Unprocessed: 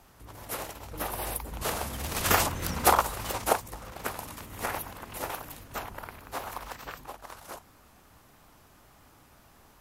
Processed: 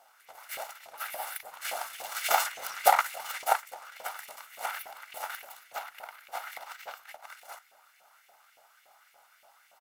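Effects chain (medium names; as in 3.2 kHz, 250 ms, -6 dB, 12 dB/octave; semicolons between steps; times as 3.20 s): comb filter that takes the minimum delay 1.4 ms; echo from a far wall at 110 m, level -23 dB; LFO high-pass saw up 3.5 Hz 560–2400 Hz; trim -3 dB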